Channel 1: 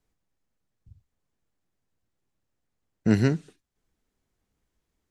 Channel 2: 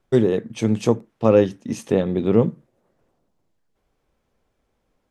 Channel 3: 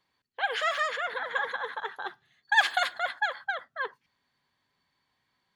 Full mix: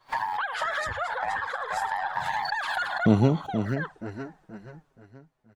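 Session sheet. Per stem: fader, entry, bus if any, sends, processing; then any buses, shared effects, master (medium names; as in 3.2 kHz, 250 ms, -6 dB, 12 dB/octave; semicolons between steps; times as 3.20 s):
+3.0 dB, 0.00 s, no bus, no send, echo send -12 dB, treble shelf 4 kHz -8.5 dB; level rider gain up to 9.5 dB
+2.5 dB, 0.00 s, bus A, no send, echo send -9 dB, Bessel high-pass 560 Hz, order 4; compression, threshold -23 dBFS, peak gain reduction 8.5 dB; ring modulator 1.3 kHz
-1.5 dB, 0.00 s, bus A, no send, no echo send, swell ahead of each attack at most 43 dB/s
bus A: 0.0 dB, gate -39 dBFS, range -22 dB; peak limiter -20.5 dBFS, peak gain reduction 11.5 dB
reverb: none
echo: feedback delay 476 ms, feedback 39%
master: high-order bell 900 Hz +9 dB; touch-sensitive flanger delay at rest 8.5 ms, full sweep at -16.5 dBFS; compression 1.5:1, threshold -29 dBFS, peak gain reduction 8.5 dB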